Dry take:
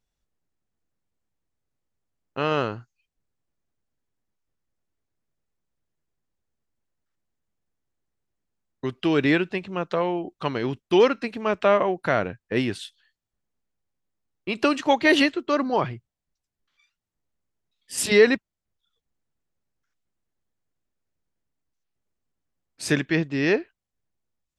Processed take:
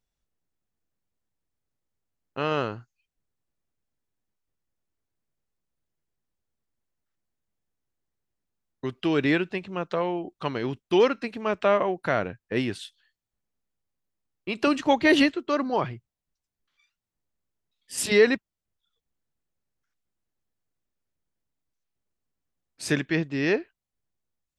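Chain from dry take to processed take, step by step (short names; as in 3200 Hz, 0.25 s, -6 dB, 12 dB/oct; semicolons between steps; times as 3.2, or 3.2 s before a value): 14.67–15.31 low shelf 190 Hz +10.5 dB; gain -2.5 dB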